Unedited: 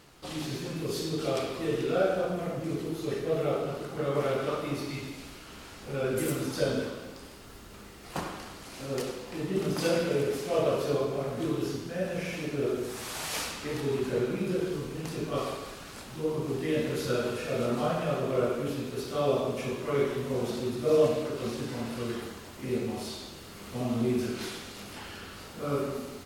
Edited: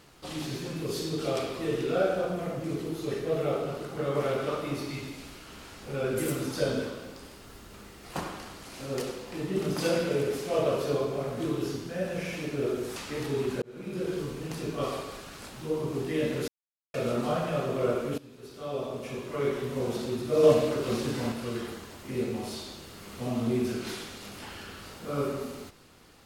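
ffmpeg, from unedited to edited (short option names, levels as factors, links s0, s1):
-filter_complex "[0:a]asplit=8[s0][s1][s2][s3][s4][s5][s6][s7];[s0]atrim=end=12.962[s8];[s1]atrim=start=13.498:end=14.16,asetpts=PTS-STARTPTS,afade=t=out:st=0.658:d=0.004:c=hsin[s9];[s2]atrim=start=14.16:end=17.02,asetpts=PTS-STARTPTS,afade=t=in:d=0.54,afade=t=out:st=2.856:d=0.004:c=hsin[s10];[s3]atrim=start=17.02:end=17.48,asetpts=PTS-STARTPTS,volume=0[s11];[s4]atrim=start=17.48:end=18.72,asetpts=PTS-STARTPTS,afade=t=in:d=0.004:c=hsin,afade=t=out:st=1.236:d=0.004:c=hsin:silence=0.125893[s12];[s5]atrim=start=18.72:end=20.972,asetpts=PTS-STARTPTS,afade=t=in:d=1.58:silence=0.125893[s13];[s6]atrim=start=20.968:end=21.862,asetpts=PTS-STARTPTS,volume=1.58[s14];[s7]atrim=start=21.858[s15];[s9][s10][s11][s12][s13]concat=n=5:v=0:a=1[s16];[s8][s16]acrossfade=d=0.004:c1=hsin:c2=hsin[s17];[s17][s14]acrossfade=d=0.004:c1=hsin:c2=hsin[s18];[s18][s15]acrossfade=d=0.004:c1=hsin:c2=hsin"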